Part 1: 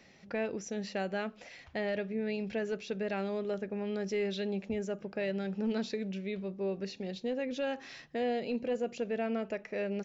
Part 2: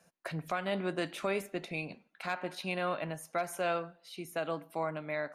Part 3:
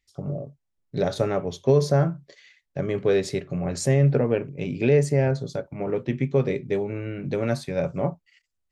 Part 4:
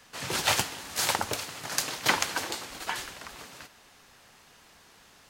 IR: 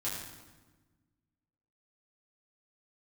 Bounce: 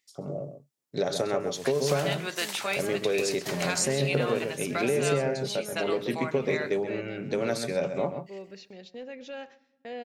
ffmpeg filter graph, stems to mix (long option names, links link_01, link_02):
-filter_complex "[0:a]agate=range=-25dB:threshold=-43dB:ratio=16:detection=peak,lowshelf=frequency=400:gain=-8,adelay=1700,volume=-3.5dB,asplit=3[link_01][link_02][link_03];[link_02]volume=-22.5dB[link_04];[link_03]volume=-21dB[link_05];[1:a]equalizer=frequency=3500:width=0.3:gain=14.5,adelay=1400,volume=-5dB[link_06];[2:a]highpass=160,volume=0.5dB,asplit=2[link_07][link_08];[link_08]volume=-11dB[link_09];[3:a]adelay=1400,volume=-15dB,asplit=2[link_10][link_11];[link_11]volume=-4.5dB[link_12];[link_06][link_07][link_10]amix=inputs=3:normalize=0,bass=frequency=250:gain=-6,treble=frequency=4000:gain=7,acompressor=threshold=-23dB:ratio=6,volume=0dB[link_13];[4:a]atrim=start_sample=2205[link_14];[link_04][link_14]afir=irnorm=-1:irlink=0[link_15];[link_05][link_09][link_12]amix=inputs=3:normalize=0,aecho=0:1:131:1[link_16];[link_01][link_13][link_15][link_16]amix=inputs=4:normalize=0"